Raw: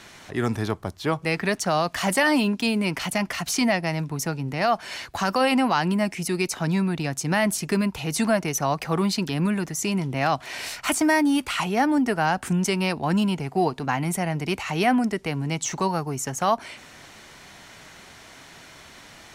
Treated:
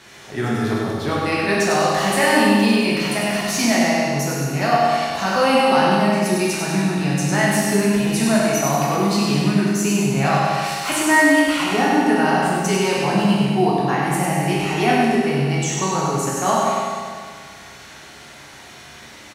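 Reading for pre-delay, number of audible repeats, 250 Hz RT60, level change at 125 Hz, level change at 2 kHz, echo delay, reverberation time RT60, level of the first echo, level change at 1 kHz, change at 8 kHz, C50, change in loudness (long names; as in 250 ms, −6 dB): 10 ms, 1, 1.8 s, +5.5 dB, +6.5 dB, 98 ms, 1.8 s, −4.5 dB, +6.5 dB, +5.5 dB, −3.0 dB, +6.0 dB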